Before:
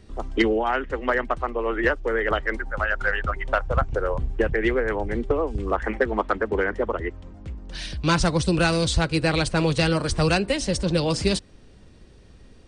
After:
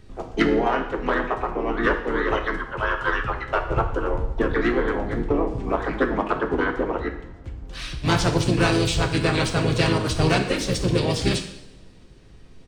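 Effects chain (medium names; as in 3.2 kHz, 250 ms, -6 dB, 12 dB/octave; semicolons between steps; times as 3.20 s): harmony voices -7 st -3 dB, -3 st -5 dB, +12 st -17 dB; two-slope reverb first 0.75 s, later 2.6 s, from -24 dB, DRR 4.5 dB; trim -3 dB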